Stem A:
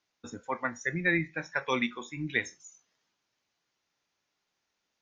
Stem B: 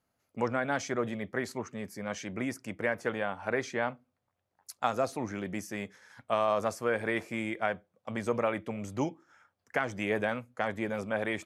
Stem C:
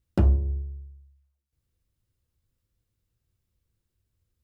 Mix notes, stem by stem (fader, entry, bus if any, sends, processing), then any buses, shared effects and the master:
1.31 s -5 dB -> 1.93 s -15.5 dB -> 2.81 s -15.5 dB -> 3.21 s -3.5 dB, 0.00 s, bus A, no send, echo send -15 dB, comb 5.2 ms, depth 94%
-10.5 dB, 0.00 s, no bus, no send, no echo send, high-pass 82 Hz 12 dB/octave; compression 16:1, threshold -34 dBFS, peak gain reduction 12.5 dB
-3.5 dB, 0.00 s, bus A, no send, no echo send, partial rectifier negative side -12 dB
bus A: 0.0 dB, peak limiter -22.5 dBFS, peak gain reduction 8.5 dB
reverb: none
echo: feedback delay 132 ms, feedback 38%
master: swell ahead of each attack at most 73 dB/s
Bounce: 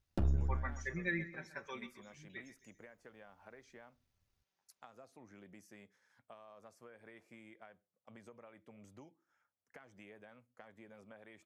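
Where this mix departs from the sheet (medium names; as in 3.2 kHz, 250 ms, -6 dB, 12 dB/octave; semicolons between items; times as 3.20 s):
stem A -5.0 dB -> -13.5 dB; stem B -10.5 dB -> -18.0 dB; master: missing swell ahead of each attack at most 73 dB/s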